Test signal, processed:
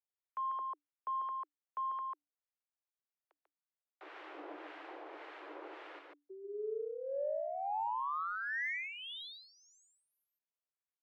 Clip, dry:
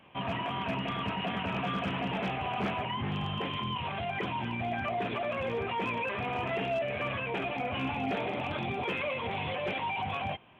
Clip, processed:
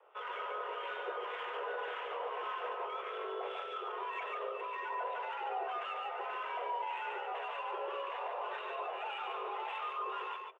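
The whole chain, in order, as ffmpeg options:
ffmpeg -i in.wav -filter_complex "[0:a]afreqshift=290,acrossover=split=430 3400:gain=0.158 1 0.158[link_01][link_02][link_03];[link_01][link_02][link_03]amix=inputs=3:normalize=0,acrossover=split=220[link_04][link_05];[link_05]alimiter=level_in=4.5dB:limit=-24dB:level=0:latency=1:release=15,volume=-4.5dB[link_06];[link_04][link_06]amix=inputs=2:normalize=0,acrossover=split=1100[link_07][link_08];[link_07]aeval=exprs='val(0)*(1-0.7/2+0.7/2*cos(2*PI*1.8*n/s))':channel_layout=same[link_09];[link_08]aeval=exprs='val(0)*(1-0.7/2-0.7/2*cos(2*PI*1.8*n/s))':channel_layout=same[link_10];[link_09][link_10]amix=inputs=2:normalize=0,adynamicsmooth=sensitivity=3.5:basefreq=3500,highshelf=frequency=4600:gain=-9.5,aecho=1:1:144:0.668" out.wav

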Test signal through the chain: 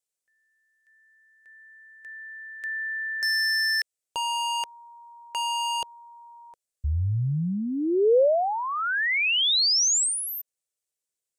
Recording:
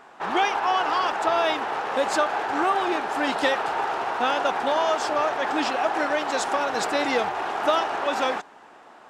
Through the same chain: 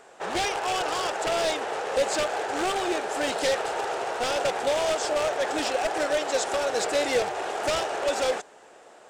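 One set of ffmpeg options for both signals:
ffmpeg -i in.wav -filter_complex "[0:a]aeval=exprs='0.119*(abs(mod(val(0)/0.119+3,4)-2)-1)':channel_layout=same,equalizer=frequency=250:width_type=o:width=1:gain=-6,equalizer=frequency=500:width_type=o:width=1:gain=9,equalizer=frequency=1000:width_type=o:width=1:gain=-7,equalizer=frequency=8000:width_type=o:width=1:gain=12,acrossover=split=5600[link_01][link_02];[link_02]acompressor=threshold=-33dB:ratio=4:attack=1:release=60[link_03];[link_01][link_03]amix=inputs=2:normalize=0,volume=-2dB" out.wav

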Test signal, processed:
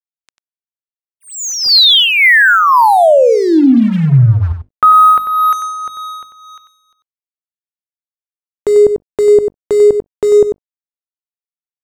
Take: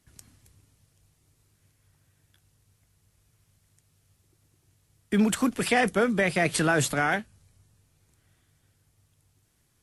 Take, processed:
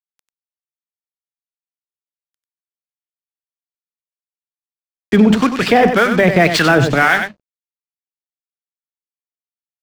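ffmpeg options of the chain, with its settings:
ffmpeg -i in.wav -filter_complex "[0:a]lowpass=frequency=5300:width=0.5412,lowpass=frequency=5300:width=1.3066,bandreject=frequency=50:width_type=h:width=6,bandreject=frequency=100:width_type=h:width=6,bandreject=frequency=150:width_type=h:width=6,bandreject=frequency=200:width_type=h:width=6,bandreject=frequency=250:width_type=h:width=6,bandreject=frequency=300:width_type=h:width=6,dynaudnorm=framelen=270:gausssize=9:maxgain=10dB,asplit=2[link_01][link_02];[link_02]acrusher=bits=3:mix=0:aa=0.5,volume=-10.5dB[link_03];[link_01][link_03]amix=inputs=2:normalize=0,aeval=exprs='sgn(val(0))*max(abs(val(0))-0.0126,0)':channel_layout=same,acrossover=split=910[link_04][link_05];[link_04]aeval=exprs='val(0)*(1-0.7/2+0.7/2*cos(2*PI*1.9*n/s))':channel_layout=same[link_06];[link_05]aeval=exprs='val(0)*(1-0.7/2-0.7/2*cos(2*PI*1.9*n/s))':channel_layout=same[link_07];[link_06][link_07]amix=inputs=2:normalize=0,asplit=2[link_08][link_09];[link_09]aecho=0:1:94:0.335[link_10];[link_08][link_10]amix=inputs=2:normalize=0,alimiter=level_in=8dB:limit=-1dB:release=50:level=0:latency=1,volume=-1dB" out.wav

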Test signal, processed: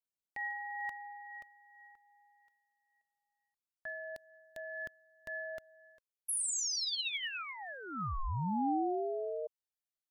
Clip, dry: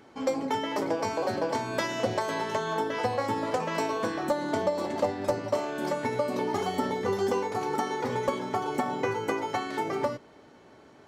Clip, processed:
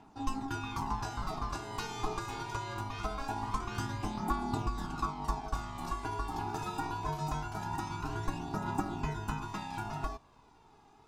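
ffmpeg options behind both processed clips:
ffmpeg -i in.wav -af "equalizer=frequency=1300:width_type=o:width=1.4:gain=-11.5,aeval=exprs='val(0)*sin(2*PI*540*n/s)':channel_layout=same,aphaser=in_gain=1:out_gain=1:delay=2.5:decay=0.43:speed=0.23:type=triangular,volume=-2.5dB" out.wav

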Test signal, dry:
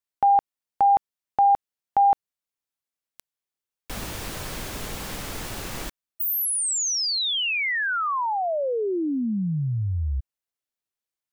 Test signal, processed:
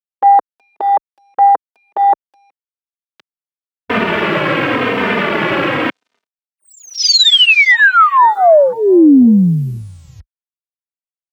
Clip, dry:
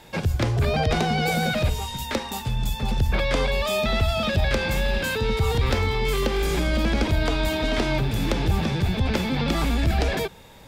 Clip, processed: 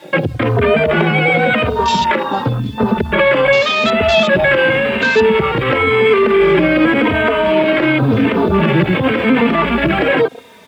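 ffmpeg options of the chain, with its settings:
ffmpeg -i in.wav -filter_complex "[0:a]acompressor=threshold=-25dB:ratio=3:attack=1:release=284:knee=1:detection=rms,lowpass=frequency=3900:width=0.5412,lowpass=frequency=3900:width=1.3066,equalizer=frequency=780:width_type=o:width=0.31:gain=-8,asplit=2[link_01][link_02];[link_02]adelay=370,highpass=300,lowpass=3400,asoftclip=type=hard:threshold=-27.5dB,volume=-26dB[link_03];[link_01][link_03]amix=inputs=2:normalize=0,acrusher=bits=8:mix=0:aa=0.5,highpass=240,afwtdn=0.0112,alimiter=level_in=29dB:limit=-1dB:release=50:level=0:latency=1,asplit=2[link_04][link_05];[link_05]adelay=3.1,afreqshift=-0.91[link_06];[link_04][link_06]amix=inputs=2:normalize=1,volume=-1dB" out.wav

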